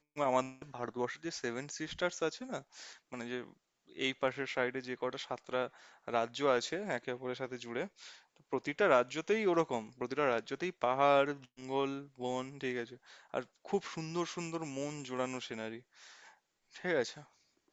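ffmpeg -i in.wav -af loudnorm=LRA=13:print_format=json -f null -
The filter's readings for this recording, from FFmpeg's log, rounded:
"input_i" : "-36.3",
"input_tp" : "-12.0",
"input_lra" : "7.0",
"input_thresh" : "-47.0",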